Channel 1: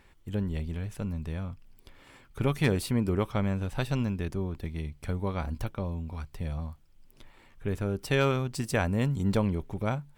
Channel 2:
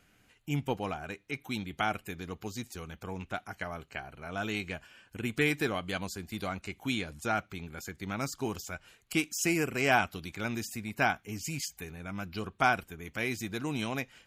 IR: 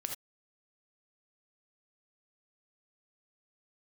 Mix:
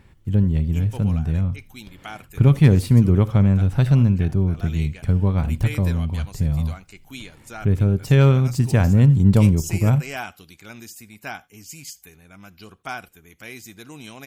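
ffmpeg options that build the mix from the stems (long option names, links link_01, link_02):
-filter_complex "[0:a]equalizer=frequency=120:width_type=o:width=2.1:gain=14.5,volume=0dB,asplit=2[link_01][link_02];[link_02]volume=-12dB[link_03];[1:a]highshelf=frequency=4600:gain=10,adelay=250,volume=-7.5dB,asplit=2[link_04][link_05];[link_05]volume=-17dB[link_06];[2:a]atrim=start_sample=2205[link_07];[link_03][link_06]amix=inputs=2:normalize=0[link_08];[link_08][link_07]afir=irnorm=-1:irlink=0[link_09];[link_01][link_04][link_09]amix=inputs=3:normalize=0"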